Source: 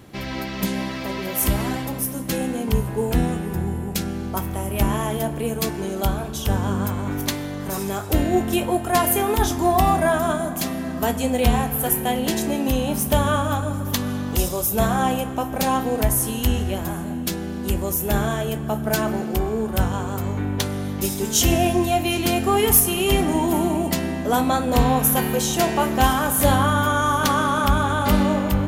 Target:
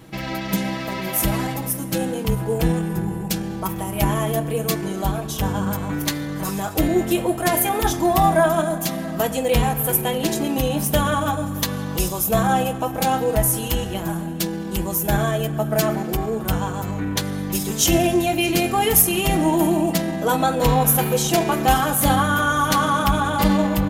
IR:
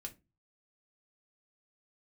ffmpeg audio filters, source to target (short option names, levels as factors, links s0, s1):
-af "aecho=1:1:6.2:0.65,atempo=1.2"